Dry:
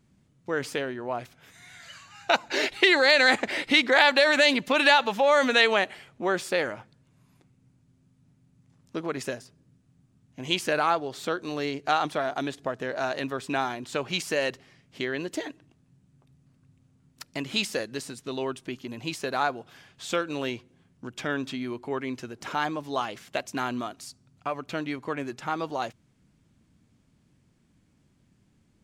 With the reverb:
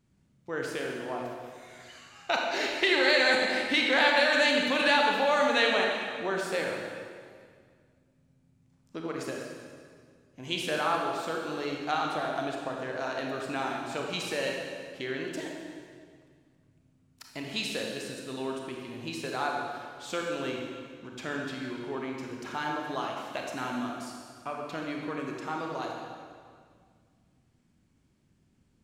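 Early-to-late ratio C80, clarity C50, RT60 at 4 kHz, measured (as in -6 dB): 2.5 dB, 1.0 dB, 1.7 s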